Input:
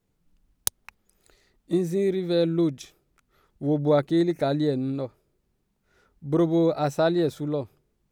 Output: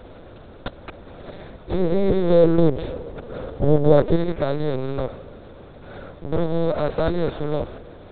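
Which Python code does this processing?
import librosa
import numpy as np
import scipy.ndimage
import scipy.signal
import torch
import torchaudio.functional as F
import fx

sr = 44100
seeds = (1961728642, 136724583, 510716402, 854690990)

y = fx.bin_compress(x, sr, power=0.4)
y = fx.small_body(y, sr, hz=(280.0, 490.0), ring_ms=20, db=9, at=(1.79, 4.16))
y = fx.lpc_vocoder(y, sr, seeds[0], excitation='pitch_kept', order=8)
y = F.gain(torch.from_numpy(y), -3.0).numpy()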